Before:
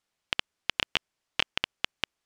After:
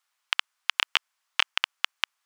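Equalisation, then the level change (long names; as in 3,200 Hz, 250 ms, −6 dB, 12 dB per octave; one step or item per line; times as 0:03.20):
high-pass with resonance 1,100 Hz, resonance Q 1.7
high-shelf EQ 10,000 Hz +7.5 dB
+2.5 dB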